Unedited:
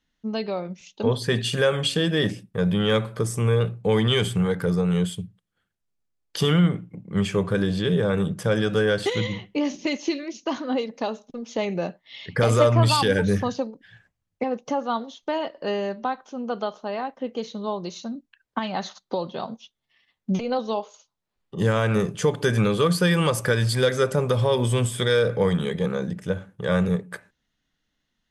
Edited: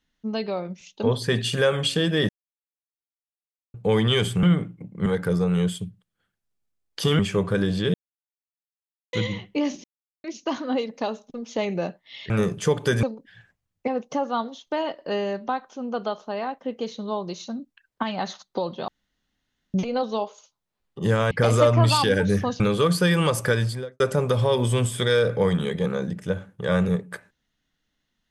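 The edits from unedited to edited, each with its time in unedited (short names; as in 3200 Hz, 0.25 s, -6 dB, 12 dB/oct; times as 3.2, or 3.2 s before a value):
2.29–3.74 mute
6.56–7.19 move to 4.43
7.94–9.13 mute
9.84–10.24 mute
12.3–13.59 swap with 21.87–22.6
19.44–20.3 room tone
23.51–24 studio fade out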